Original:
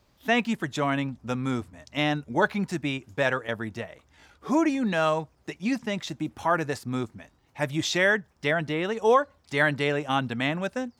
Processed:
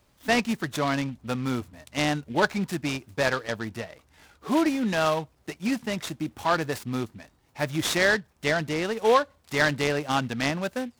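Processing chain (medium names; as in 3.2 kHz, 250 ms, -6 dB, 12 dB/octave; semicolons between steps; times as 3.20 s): treble shelf 9.3 kHz +11 dB; delay time shaken by noise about 2.4 kHz, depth 0.033 ms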